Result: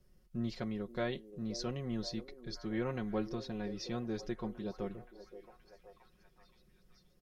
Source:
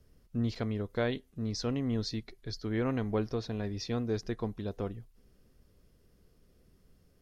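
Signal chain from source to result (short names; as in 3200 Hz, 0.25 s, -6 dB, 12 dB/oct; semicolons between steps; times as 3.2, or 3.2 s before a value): comb 5.5 ms, depth 76%; delay with a stepping band-pass 0.525 s, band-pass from 410 Hz, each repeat 0.7 oct, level -9.5 dB; gain -6 dB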